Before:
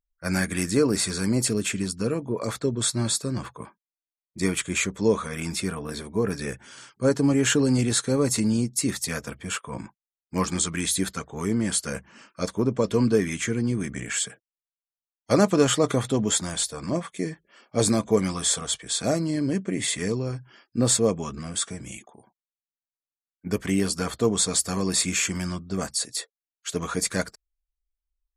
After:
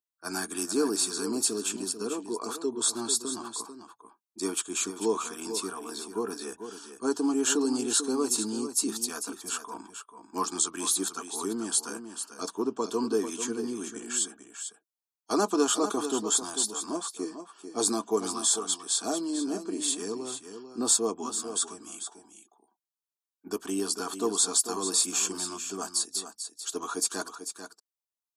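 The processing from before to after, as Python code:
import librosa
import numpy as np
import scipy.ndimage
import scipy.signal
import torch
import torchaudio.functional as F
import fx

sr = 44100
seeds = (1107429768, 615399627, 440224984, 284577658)

p1 = scipy.signal.sosfilt(scipy.signal.butter(2, 330.0, 'highpass', fs=sr, output='sos'), x)
p2 = fx.fixed_phaser(p1, sr, hz=550.0, stages=6)
y = p2 + fx.echo_single(p2, sr, ms=443, db=-9.5, dry=0)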